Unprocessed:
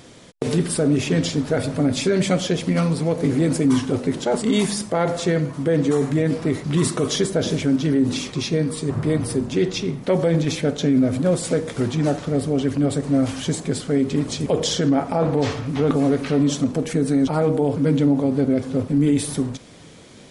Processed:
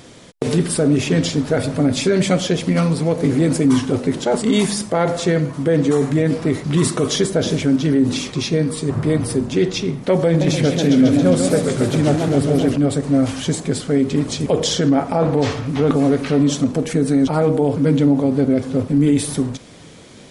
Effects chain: 10.27–12.76 warbling echo 0.135 s, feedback 72%, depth 196 cents, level -5.5 dB; gain +3 dB

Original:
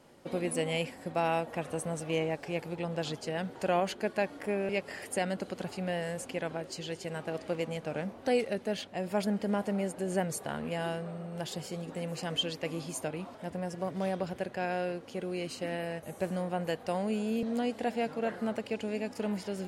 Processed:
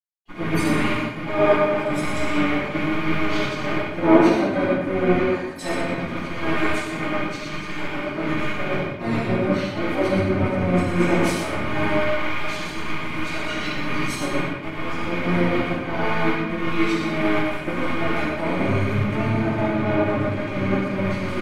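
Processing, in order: rattling part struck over -44 dBFS, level -25 dBFS; gate -41 dBFS, range -56 dB; low shelf 61 Hz +3 dB; notch 3000 Hz, Q 15; comb 3 ms, depth 86%; dynamic EQ 9600 Hz, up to -5 dB, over -57 dBFS, Q 0.83; in parallel at +2 dB: limiter -24 dBFS, peak gain reduction 9.5 dB; on the sum: harmoniser -12 st -3 dB, -7 st -6 dB, +5 st -10 dB; on a send: echo 0.11 s -6.5 dB; on the sum: shoebox room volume 650 m³, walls mixed, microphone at 9.9 m; speed mistake 48 kHz file played as 44.1 kHz; three-band expander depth 70%; gain -17.5 dB

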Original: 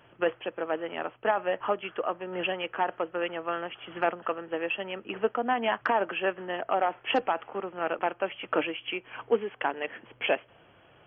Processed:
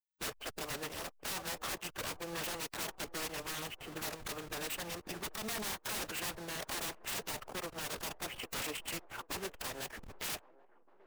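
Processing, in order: level-crossing sampler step -39.5 dBFS; dynamic EQ 320 Hz, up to -6 dB, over -41 dBFS, Q 0.95; wrapped overs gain 30.5 dB; formant-preserving pitch shift -1.5 st; band-limited delay 0.786 s, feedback 58%, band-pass 590 Hz, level -19 dB; gain -2 dB

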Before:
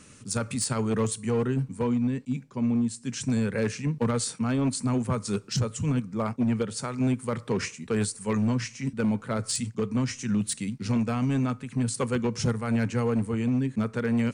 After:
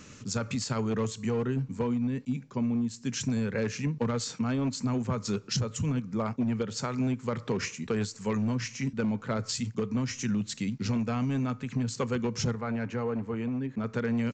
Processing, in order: compressor 3:1, threshold -31 dBFS, peak gain reduction 7 dB; 12.55–13.84 overdrive pedal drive 9 dB, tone 1100 Hz, clips at -23 dBFS; downsampling 16000 Hz; gain +3 dB

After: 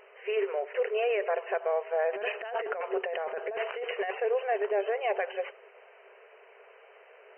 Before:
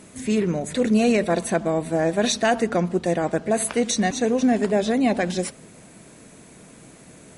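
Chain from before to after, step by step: FFT band-pass 380–3100 Hz; 2.13–4.2 negative-ratio compressor -30 dBFS, ratio -1; limiter -18 dBFS, peak gain reduction 10.5 dB; gain -2 dB

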